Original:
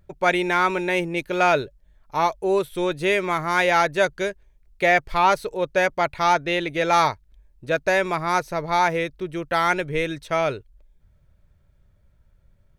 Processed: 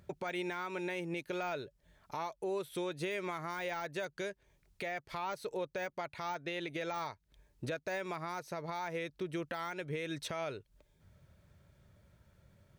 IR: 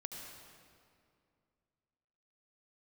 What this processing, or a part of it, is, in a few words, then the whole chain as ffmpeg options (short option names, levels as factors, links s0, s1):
broadcast voice chain: -af "highpass=100,deesser=0.6,acompressor=threshold=0.02:ratio=3,equalizer=f=5500:t=o:w=1.7:g=2.5,alimiter=level_in=2.37:limit=0.0631:level=0:latency=1:release=302,volume=0.422,volume=1.33"